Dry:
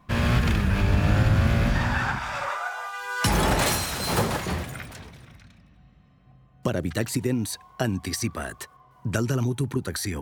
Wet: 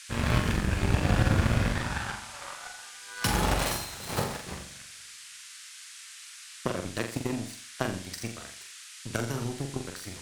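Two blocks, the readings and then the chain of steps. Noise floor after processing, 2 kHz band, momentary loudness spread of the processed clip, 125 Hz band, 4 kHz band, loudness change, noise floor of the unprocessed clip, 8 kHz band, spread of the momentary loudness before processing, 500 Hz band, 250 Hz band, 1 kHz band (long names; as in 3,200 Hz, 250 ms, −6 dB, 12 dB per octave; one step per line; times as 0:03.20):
−47 dBFS, −5.5 dB, 18 LU, −6.0 dB, −4.0 dB, −5.0 dB, −56 dBFS, −4.0 dB, 12 LU, −5.0 dB, −5.5 dB, −5.5 dB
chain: power curve on the samples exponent 2
noise in a band 1,400–9,700 Hz −48 dBFS
flutter between parallel walls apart 7.4 metres, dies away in 0.44 s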